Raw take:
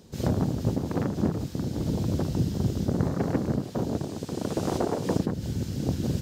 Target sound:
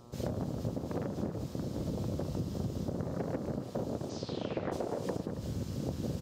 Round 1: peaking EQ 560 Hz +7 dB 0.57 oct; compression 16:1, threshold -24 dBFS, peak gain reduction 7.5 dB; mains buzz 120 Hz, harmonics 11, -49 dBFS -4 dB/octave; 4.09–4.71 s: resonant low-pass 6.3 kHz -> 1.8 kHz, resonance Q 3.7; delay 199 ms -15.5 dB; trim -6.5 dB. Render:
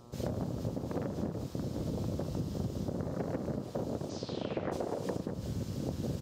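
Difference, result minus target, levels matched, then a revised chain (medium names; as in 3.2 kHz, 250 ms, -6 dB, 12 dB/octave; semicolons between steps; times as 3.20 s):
echo 77 ms early
peaking EQ 560 Hz +7 dB 0.57 oct; compression 16:1, threshold -24 dBFS, peak gain reduction 7.5 dB; mains buzz 120 Hz, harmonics 11, -49 dBFS -4 dB/octave; 4.09–4.71 s: resonant low-pass 6.3 kHz -> 1.8 kHz, resonance Q 3.7; delay 276 ms -15.5 dB; trim -6.5 dB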